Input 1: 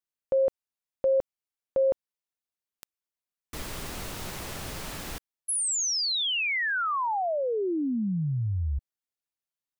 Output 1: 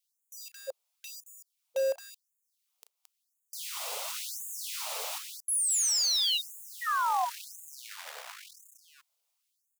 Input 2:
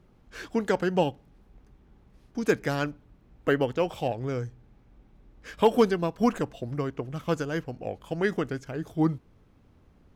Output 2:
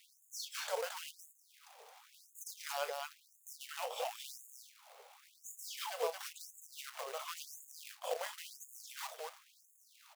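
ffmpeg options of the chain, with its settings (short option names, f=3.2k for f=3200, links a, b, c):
-filter_complex "[0:a]highpass=f=140:p=1,equalizer=f=1.7k:t=o:w=0.56:g=-12,asplit=2[a][b];[b]alimiter=limit=-21dB:level=0:latency=1:release=494,volume=-2.5dB[c];[a][c]amix=inputs=2:normalize=0,acompressor=threshold=-37dB:ratio=4:attack=0.11:release=426:knee=1:detection=peak,asplit=2[d][e];[e]aecho=0:1:34.99|221.6:0.282|0.631[f];[d][f]amix=inputs=2:normalize=0,acrusher=bits=3:mode=log:mix=0:aa=0.000001,afftfilt=real='re*gte(b*sr/1024,420*pow(6600/420,0.5+0.5*sin(2*PI*0.95*pts/sr)))':imag='im*gte(b*sr/1024,420*pow(6600/420,0.5+0.5*sin(2*PI*0.95*pts/sr)))':win_size=1024:overlap=0.75,volume=7dB"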